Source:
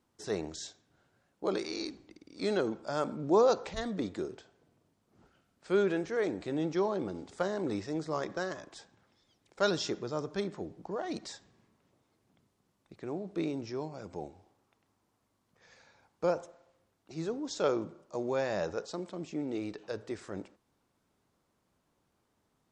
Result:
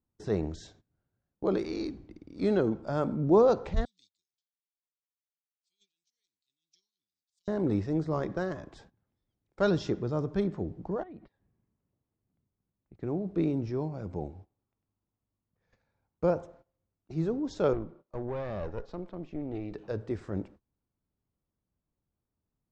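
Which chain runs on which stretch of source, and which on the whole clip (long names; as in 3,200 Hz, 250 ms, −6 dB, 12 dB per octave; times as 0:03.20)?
0:03.85–0:07.48: inverse Chebyshev high-pass filter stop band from 1,600 Hz, stop band 50 dB + amplitude tremolo 6 Hz, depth 52%
0:11.03–0:12.95: downward compressor 3 to 1, threshold −54 dBFS + low-pass filter 2,900 Hz 24 dB per octave
0:17.73–0:19.72: low-shelf EQ 200 Hz −11.5 dB + tube saturation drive 33 dB, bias 0.6 + low-pass filter 3,900 Hz
whole clip: noise gate −57 dBFS, range −18 dB; RIAA equalisation playback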